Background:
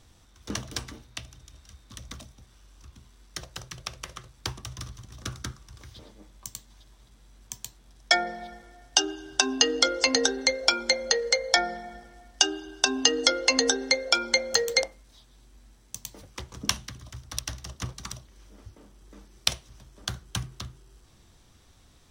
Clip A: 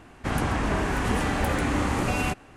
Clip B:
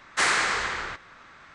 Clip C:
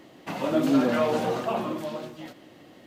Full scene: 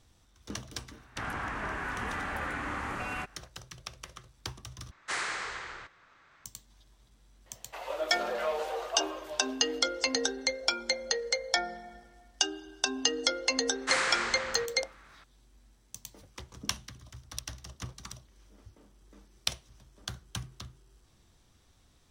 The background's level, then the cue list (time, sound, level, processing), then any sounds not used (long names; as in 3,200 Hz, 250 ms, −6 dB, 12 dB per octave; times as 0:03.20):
background −6.5 dB
0:00.92: mix in A −16 dB + parametric band 1,500 Hz +13 dB 1.8 octaves
0:04.91: overwrite with B −11 dB + parametric band 220 Hz −6 dB 0.39 octaves
0:07.46: mix in C −6.5 dB + Butterworth high-pass 450 Hz
0:13.70: mix in B −6.5 dB